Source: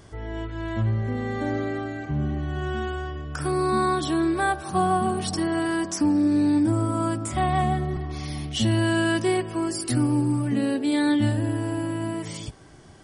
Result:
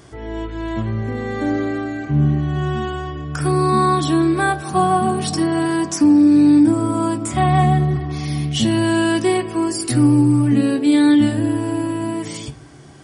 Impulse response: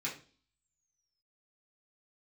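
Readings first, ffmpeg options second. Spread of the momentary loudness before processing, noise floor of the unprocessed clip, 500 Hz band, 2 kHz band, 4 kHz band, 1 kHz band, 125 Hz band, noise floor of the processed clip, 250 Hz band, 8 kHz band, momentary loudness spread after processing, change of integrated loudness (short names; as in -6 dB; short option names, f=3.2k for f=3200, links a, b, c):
10 LU, -39 dBFS, +5.5 dB, +4.0 dB, +5.0 dB, +6.0 dB, +7.0 dB, -34 dBFS, +8.5 dB, +6.0 dB, 12 LU, +7.5 dB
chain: -filter_complex "[0:a]asplit=2[a][b];[1:a]atrim=start_sample=2205,afade=t=out:st=0.42:d=0.01,atrim=end_sample=18963,lowshelf=f=150:g=11.5[c];[b][c]afir=irnorm=-1:irlink=0,volume=-10dB[d];[a][d]amix=inputs=2:normalize=0,volume=4dB"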